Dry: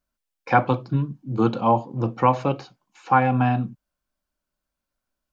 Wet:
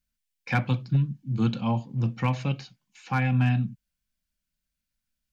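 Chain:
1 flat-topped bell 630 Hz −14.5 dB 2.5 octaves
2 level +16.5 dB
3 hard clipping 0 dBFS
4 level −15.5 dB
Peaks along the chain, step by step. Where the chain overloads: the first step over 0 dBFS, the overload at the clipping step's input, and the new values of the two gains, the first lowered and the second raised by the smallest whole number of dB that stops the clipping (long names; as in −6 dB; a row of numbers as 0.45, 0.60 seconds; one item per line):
−13.0, +3.5, 0.0, −15.5 dBFS
step 2, 3.5 dB
step 2 +12.5 dB, step 4 −11.5 dB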